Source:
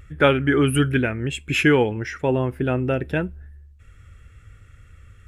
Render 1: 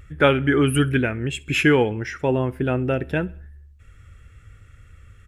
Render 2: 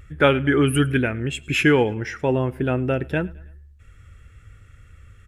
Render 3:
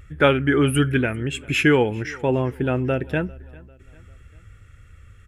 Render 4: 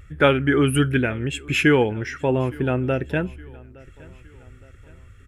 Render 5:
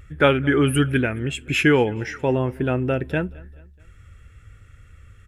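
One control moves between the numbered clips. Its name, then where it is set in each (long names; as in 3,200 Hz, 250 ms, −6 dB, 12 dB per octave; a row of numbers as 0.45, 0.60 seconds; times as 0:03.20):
repeating echo, delay time: 66, 107, 397, 865, 214 milliseconds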